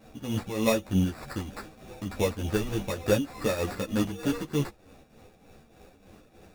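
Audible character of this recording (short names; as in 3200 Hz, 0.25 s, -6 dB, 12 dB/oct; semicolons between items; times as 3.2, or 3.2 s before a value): tremolo triangle 3.3 Hz, depth 75%; aliases and images of a low sample rate 3100 Hz, jitter 0%; a shimmering, thickened sound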